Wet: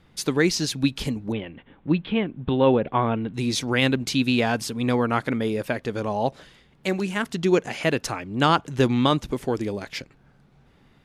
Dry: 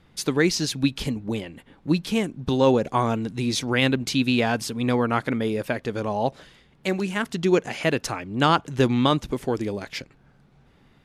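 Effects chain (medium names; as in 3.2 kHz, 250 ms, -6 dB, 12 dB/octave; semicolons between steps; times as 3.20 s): 1.32–3.34 s: steep low-pass 3.5 kHz 48 dB/octave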